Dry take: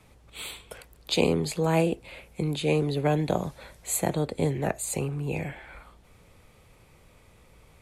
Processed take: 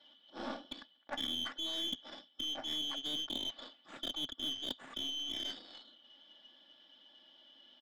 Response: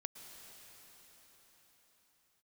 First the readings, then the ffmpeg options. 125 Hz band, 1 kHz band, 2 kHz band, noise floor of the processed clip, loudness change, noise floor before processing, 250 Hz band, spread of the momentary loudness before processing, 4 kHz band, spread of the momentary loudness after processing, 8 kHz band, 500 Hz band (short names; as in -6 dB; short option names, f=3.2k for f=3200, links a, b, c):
-33.5 dB, -15.5 dB, -13.5 dB, -67 dBFS, -10.5 dB, -57 dBFS, -18.0 dB, 19 LU, +3.0 dB, 18 LU, -17.5 dB, -23.5 dB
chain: -filter_complex "[0:a]afftfilt=real='real(if(lt(b,272),68*(eq(floor(b/68),0)*2+eq(floor(b/68),1)*3+eq(floor(b/68),2)*0+eq(floor(b/68),3)*1)+mod(b,68),b),0)':imag='imag(if(lt(b,272),68*(eq(floor(b/68),0)*2+eq(floor(b/68),1)*3+eq(floor(b/68),2)*0+eq(floor(b/68),3)*1)+mod(b,68),b),0)':win_size=2048:overlap=0.75,aecho=1:1:3.5:0.9,areverse,acompressor=threshold=-35dB:ratio=4,areverse,aeval=exprs='0.075*(cos(1*acos(clip(val(0)/0.075,-1,1)))-cos(1*PI/2))+0.0299*(cos(2*acos(clip(val(0)/0.075,-1,1)))-cos(2*PI/2))':c=same,asplit=2[a][b];[b]aeval=exprs='val(0)*gte(abs(val(0)),0.0126)':c=same,volume=-7dB[c];[a][c]amix=inputs=2:normalize=0,highpass=f=130:w=0.5412,highpass=f=130:w=1.3066,equalizer=f=260:t=q:w=4:g=8,equalizer=f=710:t=q:w=4:g=9,equalizer=f=1.7k:t=q:w=4:g=4,lowpass=f=3.4k:w=0.5412,lowpass=f=3.4k:w=1.3066,aeval=exprs='0.0841*(cos(1*acos(clip(val(0)/0.0841,-1,1)))-cos(1*PI/2))+0.00299*(cos(4*acos(clip(val(0)/0.0841,-1,1)))-cos(4*PI/2))+0.00668*(cos(6*acos(clip(val(0)/0.0841,-1,1)))-cos(6*PI/2))':c=same,volume=-5dB"